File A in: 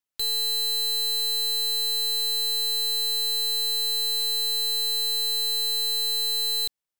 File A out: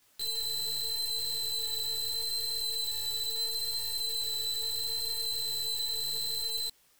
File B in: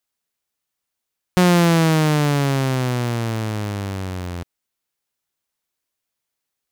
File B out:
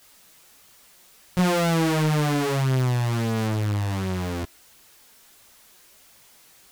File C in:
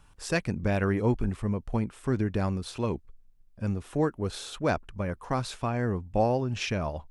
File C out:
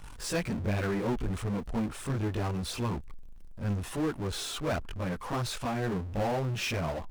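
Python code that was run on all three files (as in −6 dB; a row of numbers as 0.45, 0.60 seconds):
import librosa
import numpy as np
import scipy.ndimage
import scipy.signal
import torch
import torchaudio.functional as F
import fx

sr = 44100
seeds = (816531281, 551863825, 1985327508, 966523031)

y = fx.chorus_voices(x, sr, voices=2, hz=0.73, base_ms=19, depth_ms=3.2, mix_pct=65)
y = fx.power_curve(y, sr, exponent=0.5)
y = F.gain(torch.from_numpy(y), -7.0).numpy()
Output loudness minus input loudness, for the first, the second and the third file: −8.0, −4.5, −3.0 LU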